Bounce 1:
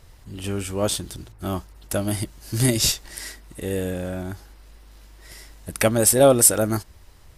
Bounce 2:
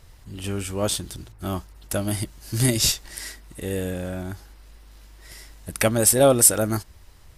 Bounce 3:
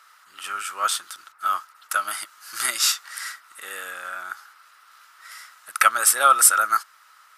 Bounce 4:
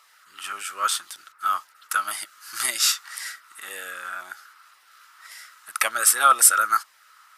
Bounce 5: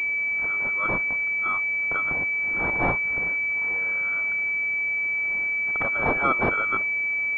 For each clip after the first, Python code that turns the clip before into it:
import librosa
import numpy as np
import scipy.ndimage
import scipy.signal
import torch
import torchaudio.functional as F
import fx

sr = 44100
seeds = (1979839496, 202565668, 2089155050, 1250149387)

y1 = fx.peak_eq(x, sr, hz=450.0, db=-2.0, octaves=2.4)
y2 = fx.highpass_res(y1, sr, hz=1300.0, q=9.0)
y3 = fx.filter_lfo_notch(y2, sr, shape='saw_down', hz=1.9, low_hz=420.0, high_hz=1600.0, q=2.3)
y4 = fx.quant_dither(y3, sr, seeds[0], bits=8, dither='triangular')
y4 = fx.pwm(y4, sr, carrier_hz=2300.0)